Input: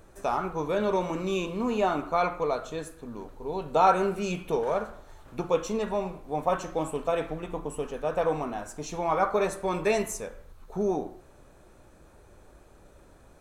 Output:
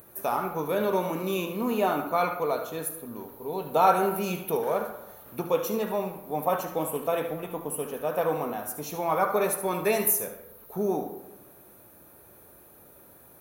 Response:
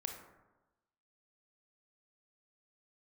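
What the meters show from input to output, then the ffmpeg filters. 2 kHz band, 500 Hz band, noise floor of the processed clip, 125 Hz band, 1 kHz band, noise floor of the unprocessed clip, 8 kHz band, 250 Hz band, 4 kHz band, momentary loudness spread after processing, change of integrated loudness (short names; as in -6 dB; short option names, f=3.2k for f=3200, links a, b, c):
+0.5 dB, +0.5 dB, -53 dBFS, -0.5 dB, +0.5 dB, -55 dBFS, +7.0 dB, 0.0 dB, +0.5 dB, 13 LU, +1.0 dB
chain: -filter_complex "[0:a]aexciter=amount=14.4:drive=8:freq=11k,highpass=110,asplit=2[a][b];[1:a]atrim=start_sample=2205,adelay=74[c];[b][c]afir=irnorm=-1:irlink=0,volume=-8dB[d];[a][d]amix=inputs=2:normalize=0"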